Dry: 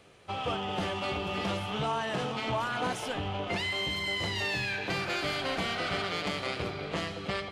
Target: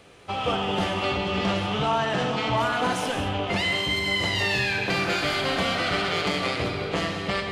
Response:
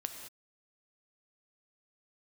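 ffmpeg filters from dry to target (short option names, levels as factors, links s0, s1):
-filter_complex "[0:a]asettb=1/sr,asplit=3[s0][s1][s2];[s0]atrim=end=0.954[s3];[s1]atrim=start=0.95:end=2.57,asetpts=PTS-STARTPTS,afade=t=in:d=0.004:c=qsin,afade=t=out:st=1.616:d=0.004:c=qsin,lowpass=7500[s4];[s2]atrim=start=2.566[s5];[s3][s4]acrossfade=d=0.004:c1=hsin:c2=qsin[s6];[s6][s5]acrossfade=d=0.004:c1=qsin:c2=hsin[s7];[1:a]atrim=start_sample=2205[s8];[s7][s8]afir=irnorm=-1:irlink=0,volume=2.37"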